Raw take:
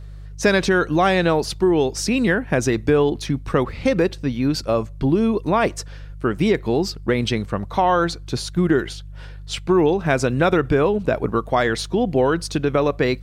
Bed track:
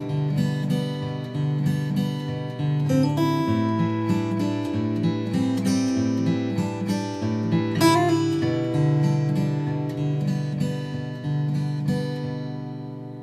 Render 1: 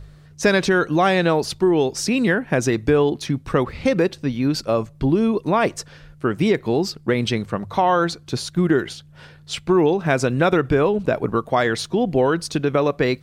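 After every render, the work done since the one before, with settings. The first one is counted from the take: de-hum 50 Hz, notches 2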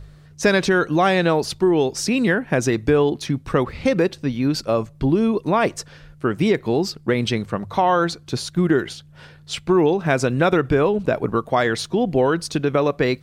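nothing audible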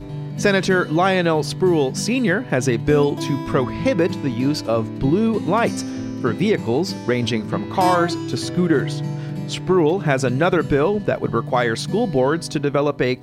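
add bed track -5 dB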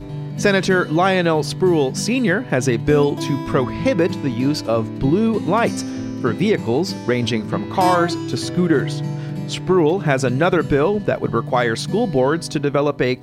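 gain +1 dB

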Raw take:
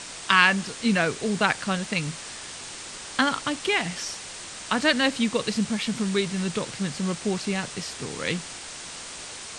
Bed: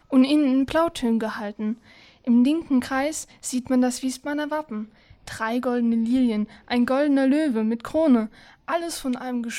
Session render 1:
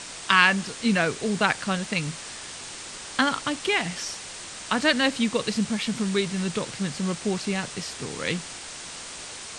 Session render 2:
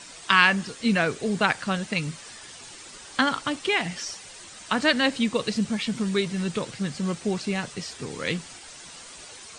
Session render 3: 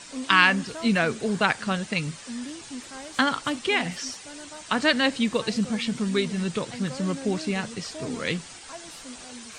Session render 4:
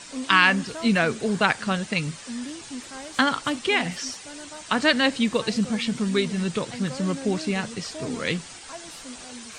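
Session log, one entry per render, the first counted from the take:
nothing audible
denoiser 9 dB, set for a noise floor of -39 dBFS
add bed -17.5 dB
gain +1.5 dB; limiter -3 dBFS, peak gain reduction 2.5 dB

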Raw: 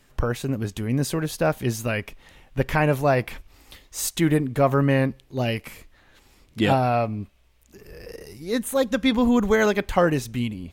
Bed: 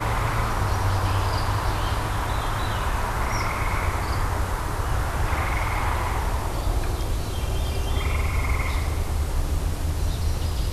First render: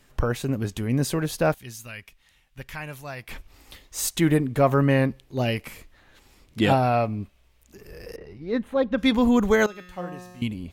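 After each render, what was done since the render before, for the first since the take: 1.54–3.29 passive tone stack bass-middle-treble 5-5-5; 8.16–8.98 air absorption 350 m; 9.66–10.42 resonator 180 Hz, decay 1.2 s, mix 90%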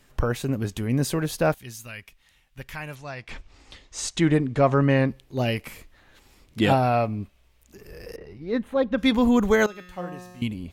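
2.95–5.08 LPF 7500 Hz 24 dB/oct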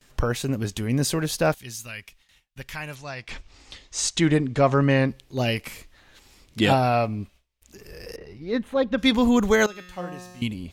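gate with hold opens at -49 dBFS; bell 5500 Hz +6 dB 2.1 oct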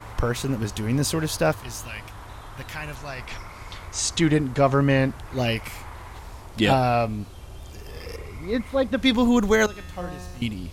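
add bed -15 dB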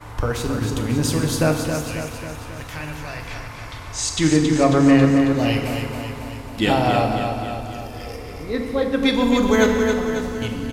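feedback echo 0.272 s, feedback 58%, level -6.5 dB; FDN reverb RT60 1.8 s, low-frequency decay 1.3×, high-frequency decay 0.8×, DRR 3.5 dB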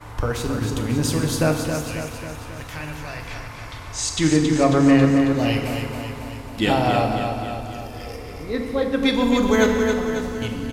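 gain -1 dB

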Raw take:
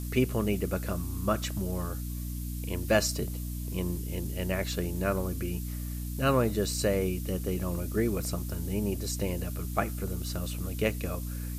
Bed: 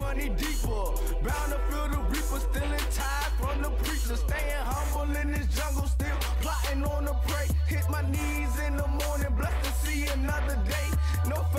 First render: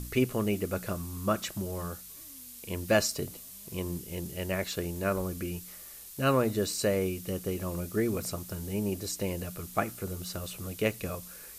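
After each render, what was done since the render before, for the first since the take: de-hum 60 Hz, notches 5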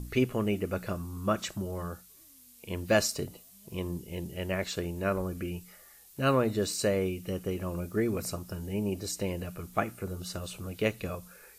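noise print and reduce 9 dB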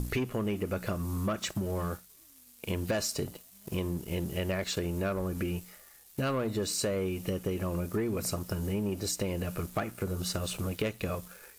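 sample leveller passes 2; compressor 6:1, threshold -29 dBFS, peak gain reduction 12 dB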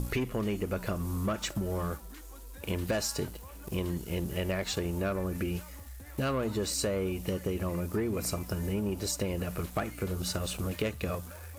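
add bed -19 dB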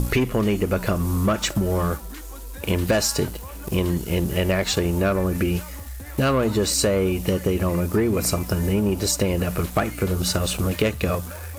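gain +10.5 dB

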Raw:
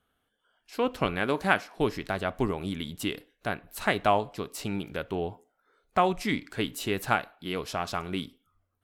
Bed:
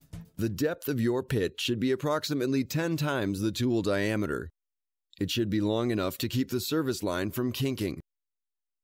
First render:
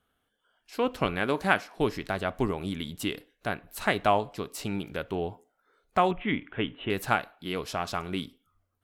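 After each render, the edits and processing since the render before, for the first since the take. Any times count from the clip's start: 6.11–6.9 steep low-pass 3400 Hz 96 dB/oct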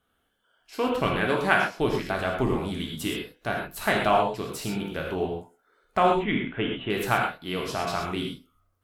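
non-linear reverb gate 0.15 s flat, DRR -0.5 dB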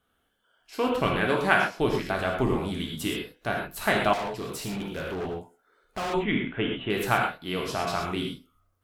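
4.13–6.14 overloaded stage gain 29 dB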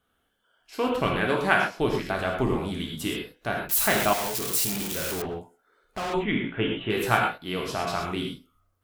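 3.69–5.22 switching spikes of -19 dBFS; 6.42–7.38 doubler 18 ms -4.5 dB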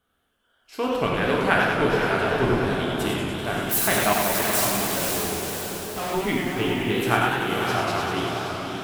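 diffused feedback echo 0.543 s, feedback 46%, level -5 dB; warbling echo 97 ms, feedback 78%, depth 162 cents, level -6 dB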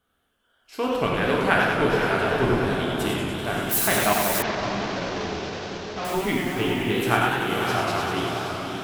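4.42–6.05 CVSD 32 kbps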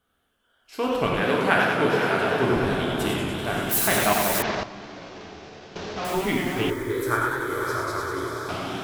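1.2–2.56 HPF 120 Hz; 4.63–5.76 resonator 74 Hz, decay 2 s, mix 80%; 6.7–8.49 fixed phaser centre 750 Hz, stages 6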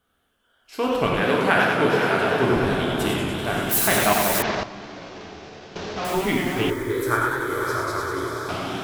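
gain +2 dB; limiter -3 dBFS, peak gain reduction 2 dB

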